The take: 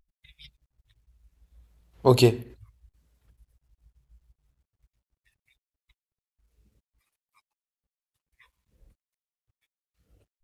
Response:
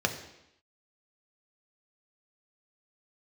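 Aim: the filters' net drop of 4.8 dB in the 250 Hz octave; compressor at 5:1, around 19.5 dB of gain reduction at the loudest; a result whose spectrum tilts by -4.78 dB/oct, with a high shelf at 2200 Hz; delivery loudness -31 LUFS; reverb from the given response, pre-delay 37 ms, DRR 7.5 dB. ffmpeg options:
-filter_complex "[0:a]equalizer=f=250:t=o:g=-8.5,highshelf=f=2.2k:g=4.5,acompressor=threshold=-38dB:ratio=5,asplit=2[a][b];[1:a]atrim=start_sample=2205,adelay=37[c];[b][c]afir=irnorm=-1:irlink=0,volume=-17dB[d];[a][d]amix=inputs=2:normalize=0,volume=14dB"

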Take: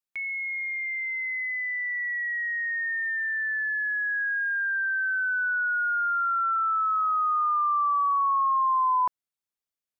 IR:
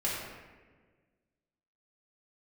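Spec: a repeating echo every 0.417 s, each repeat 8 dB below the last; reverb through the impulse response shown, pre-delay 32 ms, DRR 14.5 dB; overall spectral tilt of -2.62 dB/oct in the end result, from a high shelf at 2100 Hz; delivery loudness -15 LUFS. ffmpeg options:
-filter_complex "[0:a]highshelf=f=2.1k:g=5,aecho=1:1:417|834|1251|1668|2085:0.398|0.159|0.0637|0.0255|0.0102,asplit=2[a][b];[1:a]atrim=start_sample=2205,adelay=32[c];[b][c]afir=irnorm=-1:irlink=0,volume=-21.5dB[d];[a][d]amix=inputs=2:normalize=0,volume=8dB"

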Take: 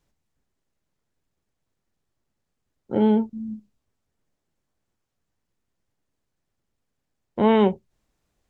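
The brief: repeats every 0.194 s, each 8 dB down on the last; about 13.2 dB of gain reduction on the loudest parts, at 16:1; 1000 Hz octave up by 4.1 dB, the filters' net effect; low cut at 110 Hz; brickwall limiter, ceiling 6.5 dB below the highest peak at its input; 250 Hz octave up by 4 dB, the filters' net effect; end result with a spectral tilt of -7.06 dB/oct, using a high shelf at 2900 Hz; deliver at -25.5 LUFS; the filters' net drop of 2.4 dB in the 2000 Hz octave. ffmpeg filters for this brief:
-af "highpass=110,equalizer=f=250:t=o:g=5,equalizer=f=1k:t=o:g=5.5,equalizer=f=2k:t=o:g=-3.5,highshelf=f=2.9k:g=-4,acompressor=threshold=-23dB:ratio=16,alimiter=limit=-19.5dB:level=0:latency=1,aecho=1:1:194|388|582|776|970:0.398|0.159|0.0637|0.0255|0.0102,volume=6dB"

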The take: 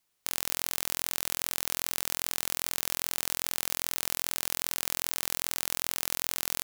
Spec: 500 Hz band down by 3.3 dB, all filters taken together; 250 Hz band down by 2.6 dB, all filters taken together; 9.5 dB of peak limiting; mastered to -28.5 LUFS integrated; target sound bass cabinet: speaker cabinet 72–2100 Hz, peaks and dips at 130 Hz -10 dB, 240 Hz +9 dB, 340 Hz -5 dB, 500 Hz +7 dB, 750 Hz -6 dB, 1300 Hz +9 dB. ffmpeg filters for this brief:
-af "equalizer=f=250:t=o:g=-5,equalizer=f=500:t=o:g=-5.5,alimiter=limit=-12.5dB:level=0:latency=1,highpass=f=72:w=0.5412,highpass=f=72:w=1.3066,equalizer=f=130:t=q:w=4:g=-10,equalizer=f=240:t=q:w=4:g=9,equalizer=f=340:t=q:w=4:g=-5,equalizer=f=500:t=q:w=4:g=7,equalizer=f=750:t=q:w=4:g=-6,equalizer=f=1.3k:t=q:w=4:g=9,lowpass=f=2.1k:w=0.5412,lowpass=f=2.1k:w=1.3066,volume=22dB"

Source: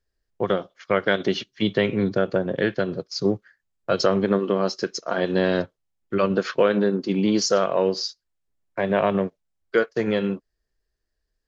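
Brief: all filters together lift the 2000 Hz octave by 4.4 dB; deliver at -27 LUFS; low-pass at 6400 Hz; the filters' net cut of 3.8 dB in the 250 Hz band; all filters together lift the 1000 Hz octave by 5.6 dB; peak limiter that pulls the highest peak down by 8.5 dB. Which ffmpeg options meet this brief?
-af "lowpass=6.4k,equalizer=f=250:t=o:g=-6,equalizer=f=1k:t=o:g=7,equalizer=f=2k:t=o:g=3,volume=-2dB,alimiter=limit=-12dB:level=0:latency=1"

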